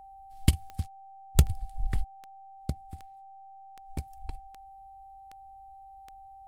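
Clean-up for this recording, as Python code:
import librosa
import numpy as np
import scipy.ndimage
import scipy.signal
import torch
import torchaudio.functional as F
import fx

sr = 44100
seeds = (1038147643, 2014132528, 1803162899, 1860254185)

y = fx.fix_declick_ar(x, sr, threshold=10.0)
y = fx.notch(y, sr, hz=780.0, q=30.0)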